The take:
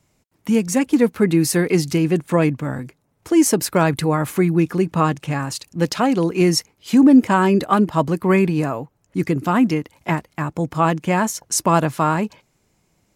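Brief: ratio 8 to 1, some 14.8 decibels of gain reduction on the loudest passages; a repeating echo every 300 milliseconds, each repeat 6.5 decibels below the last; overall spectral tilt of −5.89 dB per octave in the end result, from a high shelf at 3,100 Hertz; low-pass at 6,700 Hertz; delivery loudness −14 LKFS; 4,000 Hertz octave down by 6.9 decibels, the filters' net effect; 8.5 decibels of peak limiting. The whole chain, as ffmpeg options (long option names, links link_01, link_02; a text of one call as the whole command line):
ffmpeg -i in.wav -af "lowpass=6700,highshelf=frequency=3100:gain=-4.5,equalizer=frequency=4000:width_type=o:gain=-4.5,acompressor=threshold=-24dB:ratio=8,alimiter=limit=-21dB:level=0:latency=1,aecho=1:1:300|600|900|1200|1500|1800:0.473|0.222|0.105|0.0491|0.0231|0.0109,volume=16dB" out.wav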